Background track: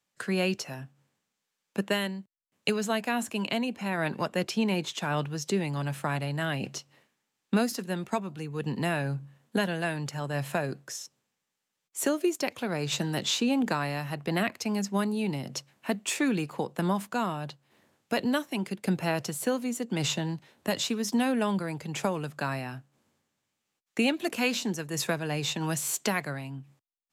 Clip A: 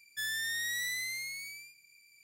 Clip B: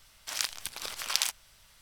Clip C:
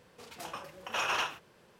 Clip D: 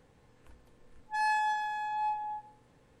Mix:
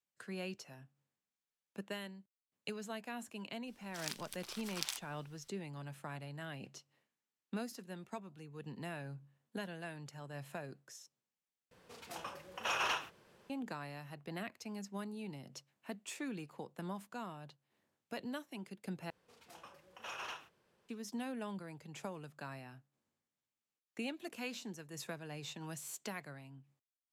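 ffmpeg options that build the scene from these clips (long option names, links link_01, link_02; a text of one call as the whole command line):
ffmpeg -i bed.wav -i cue0.wav -i cue1.wav -i cue2.wav -filter_complex "[3:a]asplit=2[link_01][link_02];[0:a]volume=-15.5dB[link_03];[2:a]acrusher=bits=8:mode=log:mix=0:aa=0.000001[link_04];[link_03]asplit=3[link_05][link_06][link_07];[link_05]atrim=end=11.714[link_08];[link_01]atrim=end=1.79,asetpts=PTS-STARTPTS,volume=-3.5dB[link_09];[link_06]atrim=start=13.496:end=19.104[link_10];[link_02]atrim=end=1.79,asetpts=PTS-STARTPTS,volume=-13.5dB[link_11];[link_07]atrim=start=20.886[link_12];[link_04]atrim=end=1.81,asetpts=PTS-STARTPTS,volume=-12dB,afade=type=in:duration=0.004:curve=hsin,afade=type=out:start_time=1.806:duration=0.004:curve=hsin,adelay=3670[link_13];[link_08][link_09]acrossfade=duration=0.004:curve1=hsin:curve2=hsin[link_14];[link_14][link_10]acrossfade=duration=0.004:curve1=hsin:curve2=hsin[link_15];[link_15][link_11]acrossfade=duration=0.004:curve1=hsin:curve2=hsin[link_16];[link_16][link_12]acrossfade=duration=0.004:curve1=hsin:curve2=hsin[link_17];[link_17][link_13]amix=inputs=2:normalize=0" out.wav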